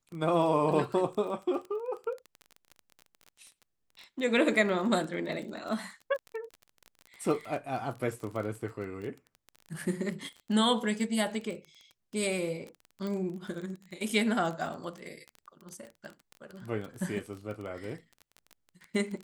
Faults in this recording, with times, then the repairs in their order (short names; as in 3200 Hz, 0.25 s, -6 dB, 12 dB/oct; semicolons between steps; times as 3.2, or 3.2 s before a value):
crackle 22/s -36 dBFS
13.07 pop -25 dBFS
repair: de-click